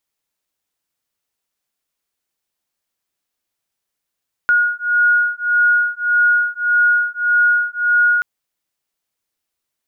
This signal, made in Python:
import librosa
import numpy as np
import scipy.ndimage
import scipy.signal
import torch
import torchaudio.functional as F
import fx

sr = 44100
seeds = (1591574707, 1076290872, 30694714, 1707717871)

y = fx.two_tone_beats(sr, length_s=3.73, hz=1440.0, beat_hz=1.7, level_db=-15.5)